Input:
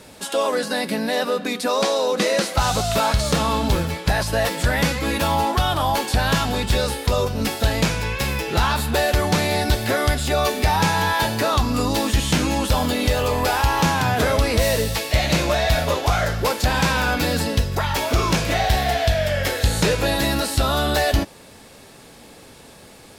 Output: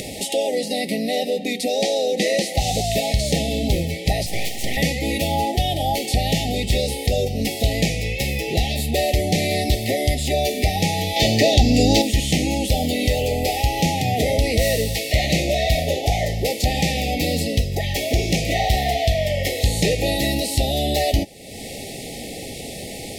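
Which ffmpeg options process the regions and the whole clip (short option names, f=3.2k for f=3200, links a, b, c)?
-filter_complex "[0:a]asettb=1/sr,asplit=3[a][b][c];[a]atrim=end=4.264[d];[b]atrim=start=4.26:end=4.77,asetpts=PTS-STARTPTS,afade=t=in:d=0.004:c=qsin,afade=t=out:st=0.506:d=0.004:c=qsin,highpass=f=110:p=1,aeval=exprs='abs(val(0))':c=same[e];[c]atrim=start=4.766[f];[d][e]acrossfade=d=0.004:c1=hsin:c2=qsin[g];[g][f]acrossfade=d=0.004:c1=qsin:c2=hsin,asettb=1/sr,asplit=3[h][i][j];[h]atrim=end=11.164[k];[i]atrim=start=11.16:end=12.02,asetpts=PTS-STARTPTS,afade=t=in:d=0.004:c=qsin,afade=t=out:st=0.856:d=0.004:c=qsin,highshelf=f=7.9k:t=q:w=1.5:g=-6.5,acontrast=65[l];[j]atrim=start=12.016[m];[k][l]acrossfade=d=0.004:c1=hsin:c2=qsin[n];[n][m]acrossfade=d=0.004:c1=qsin:c2=hsin,afftfilt=real='re*(1-between(b*sr/4096,830,1800))':imag='im*(1-between(b*sr/4096,830,1800))':win_size=4096:overlap=0.75,acompressor=mode=upward:threshold=-20dB:ratio=2.5"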